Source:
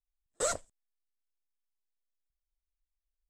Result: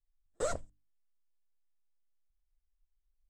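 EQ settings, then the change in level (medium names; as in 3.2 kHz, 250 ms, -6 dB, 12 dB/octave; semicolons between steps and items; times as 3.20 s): tilt EQ -2.5 dB/octave; hum notches 50/100/150/200/250/300 Hz; -3.0 dB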